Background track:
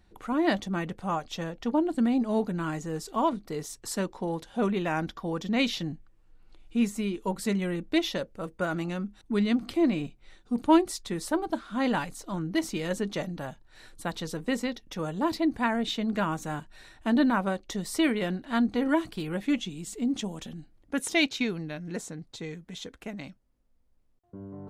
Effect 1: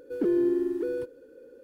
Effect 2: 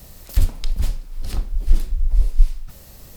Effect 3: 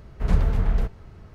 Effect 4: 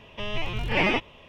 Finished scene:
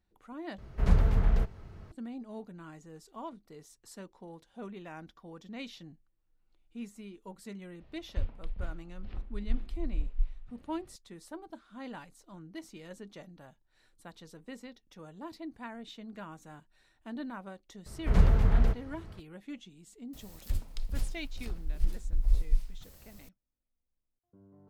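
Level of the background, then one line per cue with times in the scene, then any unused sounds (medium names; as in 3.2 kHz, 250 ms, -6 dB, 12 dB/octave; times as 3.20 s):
background track -16.5 dB
0.58 s: replace with 3 -3.5 dB
7.80 s: add 2 -15.5 dB + low-pass 3 kHz 24 dB/octave
17.86 s: add 3 -2 dB
20.13 s: add 2 -8.5 dB + random-step tremolo
not used: 1, 4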